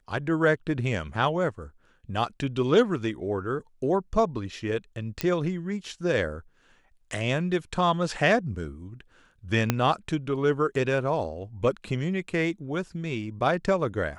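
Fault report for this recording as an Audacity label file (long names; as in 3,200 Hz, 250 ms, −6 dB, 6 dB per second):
5.210000	5.210000	click −10 dBFS
9.700000	9.700000	click −7 dBFS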